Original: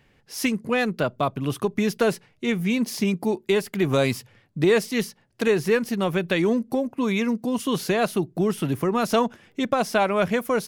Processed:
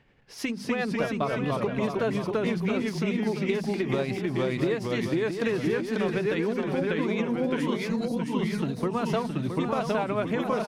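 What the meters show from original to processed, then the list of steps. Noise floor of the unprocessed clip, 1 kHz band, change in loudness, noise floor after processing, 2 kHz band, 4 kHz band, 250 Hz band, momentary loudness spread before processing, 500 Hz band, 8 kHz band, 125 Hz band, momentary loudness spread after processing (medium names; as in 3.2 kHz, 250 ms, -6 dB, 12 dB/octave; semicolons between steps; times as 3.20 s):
-62 dBFS, -5.0 dB, -4.0 dB, -39 dBFS, -4.5 dB, -6.5 dB, -3.0 dB, 6 LU, -4.0 dB, -10.5 dB, -2.0 dB, 2 LU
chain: time-frequency box 7.86–8.58 s, 290–3800 Hz -21 dB; treble shelf 11 kHz -11 dB; hum notches 50/100/150/200/250 Hz; ever faster or slower copies 219 ms, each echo -1 st, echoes 2; tremolo 9.7 Hz, depth 38%; compression, threshold -23 dBFS, peak gain reduction 8.5 dB; treble shelf 5.5 kHz -9.5 dB; delay 669 ms -8 dB; endings held to a fixed fall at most 150 dB/s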